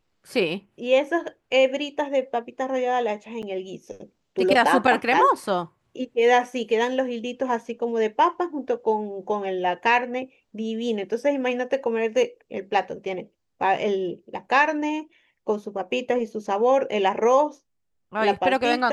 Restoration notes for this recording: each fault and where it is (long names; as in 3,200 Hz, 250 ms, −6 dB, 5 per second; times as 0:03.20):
0:03.42–0:03.43: drop-out 8.1 ms